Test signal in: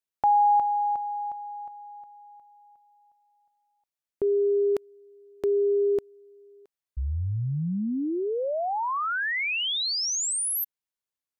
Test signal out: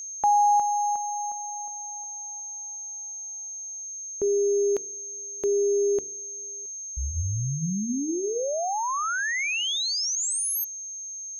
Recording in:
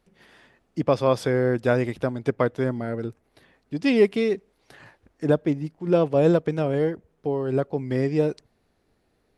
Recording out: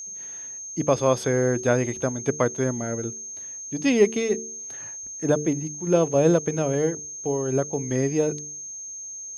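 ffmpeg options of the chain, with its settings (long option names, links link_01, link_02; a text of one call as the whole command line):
ffmpeg -i in.wav -af "aeval=exprs='val(0)+0.02*sin(2*PI*6400*n/s)':channel_layout=same,bandreject=frequency=74.67:width_type=h:width=4,bandreject=frequency=149.34:width_type=h:width=4,bandreject=frequency=224.01:width_type=h:width=4,bandreject=frequency=298.68:width_type=h:width=4,bandreject=frequency=373.35:width_type=h:width=4,bandreject=frequency=448.02:width_type=h:width=4" out.wav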